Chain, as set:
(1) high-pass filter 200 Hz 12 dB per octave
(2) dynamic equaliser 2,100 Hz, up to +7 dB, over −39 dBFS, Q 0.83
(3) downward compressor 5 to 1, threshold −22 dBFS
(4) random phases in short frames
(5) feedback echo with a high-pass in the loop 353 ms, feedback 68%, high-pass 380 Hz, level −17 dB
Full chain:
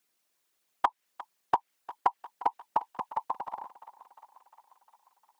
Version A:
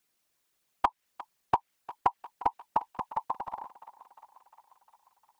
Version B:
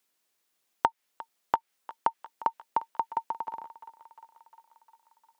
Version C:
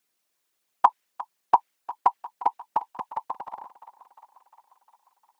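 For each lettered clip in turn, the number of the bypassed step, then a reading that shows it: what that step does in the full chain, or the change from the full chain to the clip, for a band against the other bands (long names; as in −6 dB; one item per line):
1, 250 Hz band +3.5 dB
4, change in crest factor +3.0 dB
3, average gain reduction 3.5 dB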